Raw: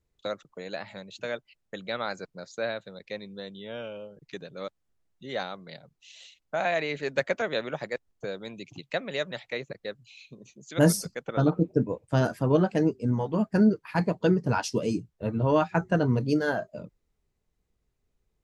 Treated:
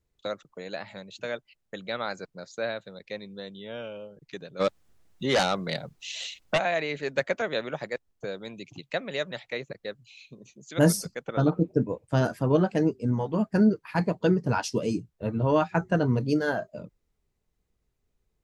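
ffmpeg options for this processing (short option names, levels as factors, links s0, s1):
-filter_complex "[0:a]asplit=3[s0][s1][s2];[s0]afade=t=out:st=4.59:d=0.02[s3];[s1]aeval=exprs='0.133*sin(PI/2*3.16*val(0)/0.133)':c=same,afade=t=in:st=4.59:d=0.02,afade=t=out:st=6.57:d=0.02[s4];[s2]afade=t=in:st=6.57:d=0.02[s5];[s3][s4][s5]amix=inputs=3:normalize=0"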